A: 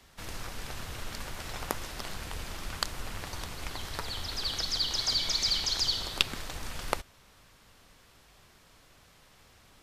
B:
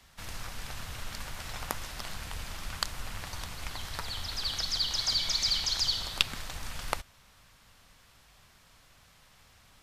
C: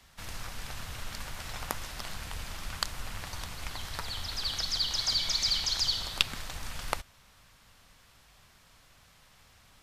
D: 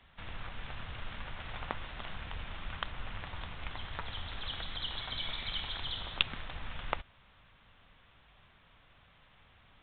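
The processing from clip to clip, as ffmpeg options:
-af "equalizer=f=370:t=o:w=1.2:g=-7.5"
-af anull
-af "volume=0.794" -ar 8000 -c:a pcm_mulaw

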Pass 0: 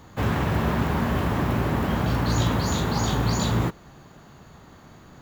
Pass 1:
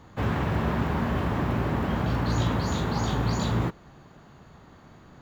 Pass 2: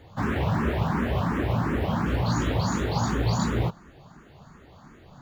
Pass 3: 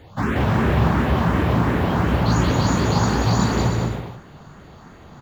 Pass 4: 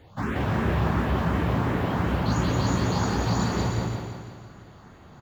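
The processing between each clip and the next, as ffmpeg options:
-af "highshelf=f=6600:g=-11,volume=0.75"
-filter_complex "[0:a]asplit=2[s0][s1];[s1]afreqshift=2.8[s2];[s0][s2]amix=inputs=2:normalize=1,volume=1.58"
-af "aecho=1:1:180|306|394.2|455.9|499.2:0.631|0.398|0.251|0.158|0.1,volume=1.68"
-af "aecho=1:1:169|338|507|676|845|1014|1183:0.355|0.202|0.115|0.0657|0.0375|0.0213|0.0122,volume=0.473"

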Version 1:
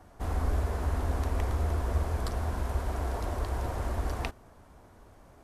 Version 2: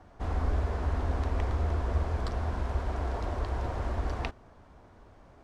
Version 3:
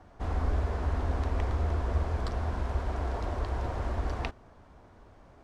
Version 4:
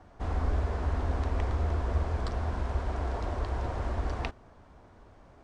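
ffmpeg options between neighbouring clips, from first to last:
-af "lowpass=5000"
-af anull
-af "aresample=22050,aresample=44100"

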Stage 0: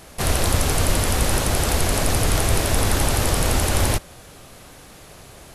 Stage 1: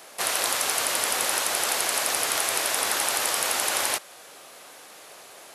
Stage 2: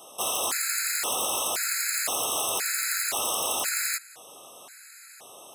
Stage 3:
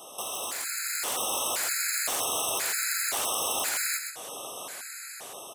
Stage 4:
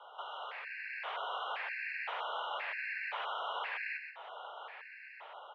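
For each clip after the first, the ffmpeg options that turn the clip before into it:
-filter_complex "[0:a]highpass=500,acrossover=split=850|5700[s0][s1][s2];[s0]alimiter=level_in=1.88:limit=0.0631:level=0:latency=1:release=363,volume=0.531[s3];[s3][s1][s2]amix=inputs=3:normalize=0"
-af "volume=11.2,asoftclip=hard,volume=0.0891,aexciter=amount=1.3:drive=7.7:freq=7000,afftfilt=real='re*gt(sin(2*PI*0.96*pts/sr)*(1-2*mod(floor(b*sr/1024/1300),2)),0)':imag='im*gt(sin(2*PI*0.96*pts/sr)*(1-2*mod(floor(b*sr/1024/1300),2)),0)':win_size=1024:overlap=0.75"
-af "acompressor=threshold=0.0126:ratio=3,aecho=1:1:128:0.501,dynaudnorm=f=270:g=7:m=1.88,volume=1.26"
-af "highpass=f=220:t=q:w=0.5412,highpass=f=220:t=q:w=1.307,lowpass=f=2800:t=q:w=0.5176,lowpass=f=2800:t=q:w=0.7071,lowpass=f=2800:t=q:w=1.932,afreqshift=190,volume=0.596"

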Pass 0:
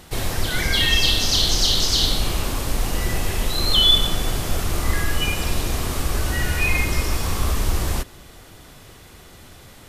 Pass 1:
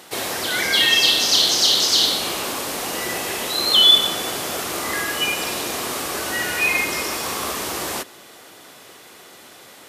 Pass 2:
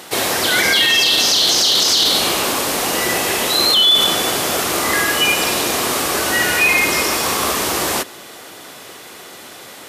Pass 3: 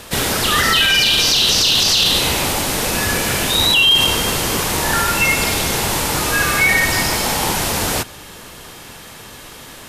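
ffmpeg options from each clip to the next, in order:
-af "highpass=330,volume=1.5"
-af "alimiter=limit=0.224:level=0:latency=1:release=17,volume=2.37"
-af "afreqshift=-270"

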